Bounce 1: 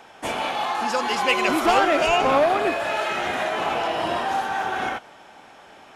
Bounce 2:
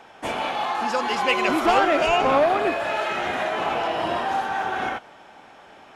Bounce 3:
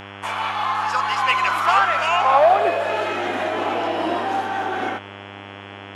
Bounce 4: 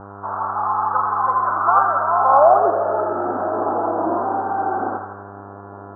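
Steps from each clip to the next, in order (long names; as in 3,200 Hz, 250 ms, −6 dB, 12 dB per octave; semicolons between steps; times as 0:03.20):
high-shelf EQ 5,400 Hz −7 dB
high-pass filter sweep 1,100 Hz → 290 Hz, 0:02.11–0:03.15; hum with harmonics 100 Hz, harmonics 34, −38 dBFS −2 dB per octave
Butterworth low-pass 1,400 Hz 72 dB per octave; feedback echo with a high-pass in the loop 83 ms, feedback 83%, high-pass 920 Hz, level −4 dB; level +1.5 dB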